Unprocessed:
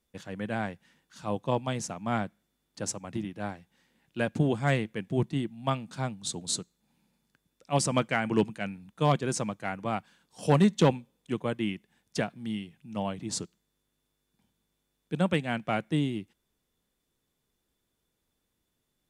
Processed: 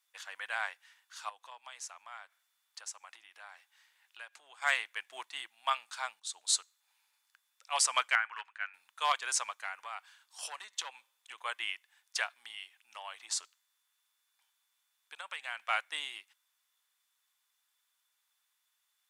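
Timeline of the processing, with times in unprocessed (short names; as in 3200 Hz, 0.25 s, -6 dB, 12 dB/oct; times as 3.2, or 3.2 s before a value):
1.29–4.62 compressor 3:1, threshold -44 dBFS
6.2–6.6 fade in, from -15.5 dB
8.15–8.74 band-pass 1500 Hz, Q 2
9.52–11.38 compressor 5:1, threshold -33 dBFS
12.35–15.61 compressor 5:1, threshold -32 dBFS
whole clip: HPF 1000 Hz 24 dB/oct; gain +3.5 dB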